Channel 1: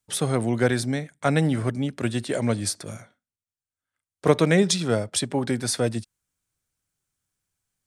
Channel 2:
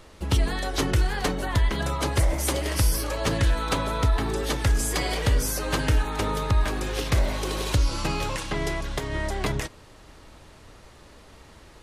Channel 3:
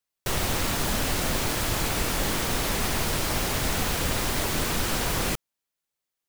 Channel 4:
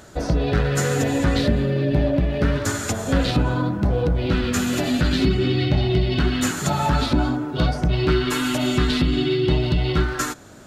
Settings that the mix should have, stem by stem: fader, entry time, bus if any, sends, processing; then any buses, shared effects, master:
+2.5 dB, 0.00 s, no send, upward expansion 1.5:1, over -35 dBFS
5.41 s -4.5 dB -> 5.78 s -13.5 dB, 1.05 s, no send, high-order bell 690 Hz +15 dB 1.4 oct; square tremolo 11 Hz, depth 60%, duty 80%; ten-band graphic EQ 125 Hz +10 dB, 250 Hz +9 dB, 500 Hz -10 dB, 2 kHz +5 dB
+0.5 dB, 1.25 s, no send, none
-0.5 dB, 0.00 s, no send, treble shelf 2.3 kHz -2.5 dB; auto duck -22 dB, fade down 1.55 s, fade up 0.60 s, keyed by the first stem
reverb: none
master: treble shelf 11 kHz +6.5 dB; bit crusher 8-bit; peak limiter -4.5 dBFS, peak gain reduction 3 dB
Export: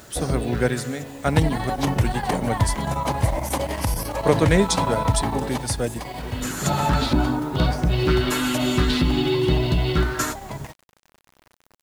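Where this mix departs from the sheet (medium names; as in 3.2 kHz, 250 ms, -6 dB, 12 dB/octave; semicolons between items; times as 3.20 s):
stem 3: muted; stem 4: missing treble shelf 2.3 kHz -2.5 dB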